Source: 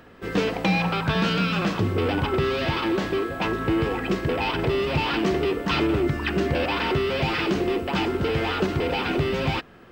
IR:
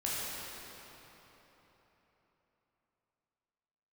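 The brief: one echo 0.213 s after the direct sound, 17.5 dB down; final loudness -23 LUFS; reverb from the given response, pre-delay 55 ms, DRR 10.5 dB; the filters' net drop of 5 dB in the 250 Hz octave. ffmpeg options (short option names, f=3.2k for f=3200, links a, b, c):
-filter_complex "[0:a]equalizer=f=250:t=o:g=-8,aecho=1:1:213:0.133,asplit=2[a][b];[1:a]atrim=start_sample=2205,adelay=55[c];[b][c]afir=irnorm=-1:irlink=0,volume=-17dB[d];[a][d]amix=inputs=2:normalize=0,volume=2.5dB"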